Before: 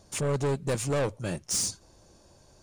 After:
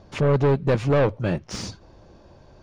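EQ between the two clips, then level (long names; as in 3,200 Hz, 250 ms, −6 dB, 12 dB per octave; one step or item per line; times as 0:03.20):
high-frequency loss of the air 270 metres
+9.0 dB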